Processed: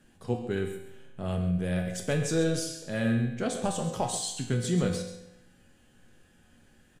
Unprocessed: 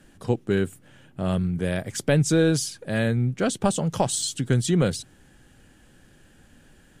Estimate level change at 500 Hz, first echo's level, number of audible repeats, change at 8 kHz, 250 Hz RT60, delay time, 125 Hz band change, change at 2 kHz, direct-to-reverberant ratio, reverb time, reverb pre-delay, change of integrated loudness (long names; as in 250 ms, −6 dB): −6.0 dB, −11.0 dB, 1, −6.0 dB, 0.90 s, 134 ms, −6.0 dB, −6.0 dB, 1.0 dB, 0.90 s, 4 ms, −5.5 dB